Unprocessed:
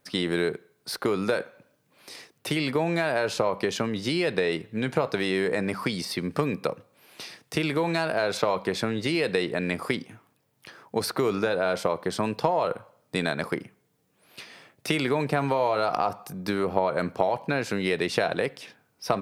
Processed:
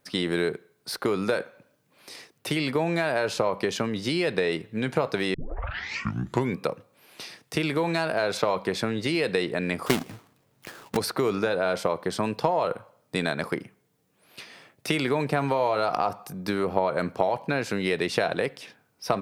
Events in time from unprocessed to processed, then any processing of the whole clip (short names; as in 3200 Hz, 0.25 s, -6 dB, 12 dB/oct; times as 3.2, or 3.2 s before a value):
5.34 tape start 1.25 s
9.86–10.97 half-waves squared off